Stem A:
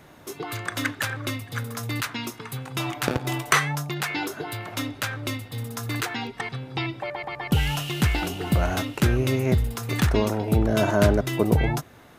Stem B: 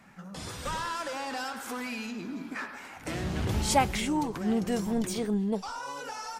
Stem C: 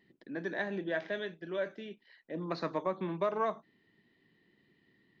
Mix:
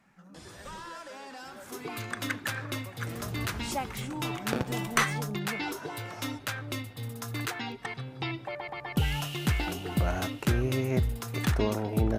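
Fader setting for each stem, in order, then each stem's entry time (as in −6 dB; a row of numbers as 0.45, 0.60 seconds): −5.5, −9.5, −16.5 decibels; 1.45, 0.00, 0.00 seconds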